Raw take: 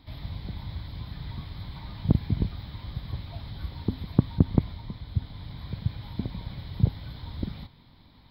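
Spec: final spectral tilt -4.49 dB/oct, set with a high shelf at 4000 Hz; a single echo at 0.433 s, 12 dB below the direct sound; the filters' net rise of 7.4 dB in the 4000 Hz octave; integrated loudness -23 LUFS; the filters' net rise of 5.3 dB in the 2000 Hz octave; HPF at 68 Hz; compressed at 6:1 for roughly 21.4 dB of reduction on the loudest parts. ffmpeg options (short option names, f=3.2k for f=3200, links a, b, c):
-af "highpass=68,equalizer=f=2k:t=o:g=3.5,highshelf=f=4k:g=8.5,equalizer=f=4k:t=o:g=3,acompressor=threshold=-40dB:ratio=6,aecho=1:1:433:0.251,volume=21.5dB"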